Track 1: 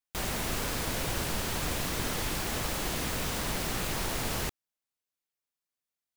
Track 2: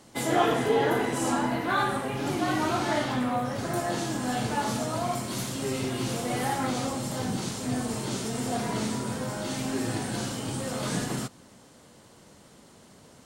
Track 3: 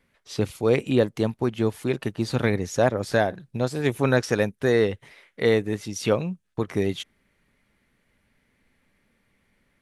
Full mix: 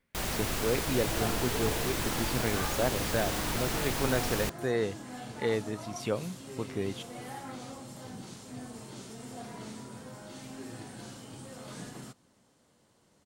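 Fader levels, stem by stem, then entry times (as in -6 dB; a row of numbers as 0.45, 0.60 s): -0.5, -13.5, -9.5 dB; 0.00, 0.85, 0.00 s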